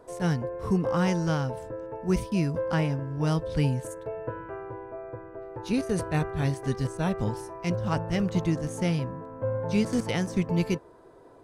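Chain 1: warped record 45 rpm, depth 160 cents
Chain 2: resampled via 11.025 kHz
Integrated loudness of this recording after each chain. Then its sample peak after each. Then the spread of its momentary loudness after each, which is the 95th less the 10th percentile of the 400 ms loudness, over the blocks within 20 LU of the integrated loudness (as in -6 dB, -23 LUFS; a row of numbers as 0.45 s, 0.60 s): -28.5 LUFS, -28.5 LUFS; -12.5 dBFS, -12.5 dBFS; 12 LU, 12 LU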